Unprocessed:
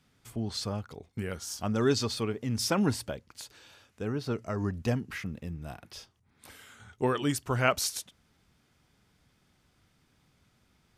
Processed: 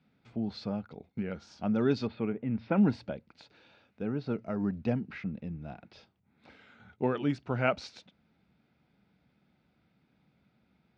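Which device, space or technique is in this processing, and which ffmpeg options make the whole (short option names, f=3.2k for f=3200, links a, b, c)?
guitar cabinet: -filter_complex "[0:a]highpass=89,equalizer=f=100:t=q:w=4:g=-9,equalizer=f=200:t=q:w=4:g=5,equalizer=f=400:t=q:w=4:g=-3,equalizer=f=1.1k:t=q:w=4:g=-9,equalizer=f=1.8k:t=q:w=4:g=-7,equalizer=f=3.1k:t=q:w=4:g=-9,lowpass=f=3.5k:w=0.5412,lowpass=f=3.5k:w=1.3066,asettb=1/sr,asplit=3[a][b][c];[a]atrim=end=2.074[d];[b]atrim=start=2.07:end=2.76,asetpts=PTS-STARTPTS,afade=t=in:d=0.004:c=qsin,afade=t=out:st=0.686:d=0.004:c=qsin,lowpass=f=2.7k:w=0.5412,lowpass=f=2.7k:w=1.3066[e];[c]atrim=start=2.756[f];[d][e]acrossfade=d=0.004:c1=hsin:c2=qsin[g];[g][f]acrossfade=d=0.004:c1=qsin:c2=hsin"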